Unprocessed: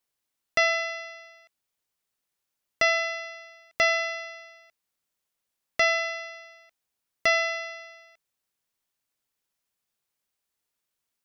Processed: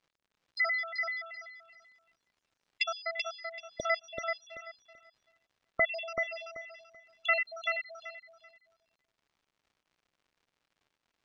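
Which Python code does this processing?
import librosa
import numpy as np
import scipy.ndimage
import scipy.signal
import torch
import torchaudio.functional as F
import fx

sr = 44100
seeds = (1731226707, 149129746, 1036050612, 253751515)

y = fx.spec_dropout(x, sr, seeds[0], share_pct=78)
y = fx.high_shelf(y, sr, hz=2400.0, db=10.0, at=(1.27, 2.84))
y = fx.dmg_crackle(y, sr, seeds[1], per_s=94.0, level_db=-56.0)
y = fx.air_absorb(y, sr, metres=110.0)
y = fx.echo_feedback(y, sr, ms=384, feedback_pct=22, wet_db=-4.5)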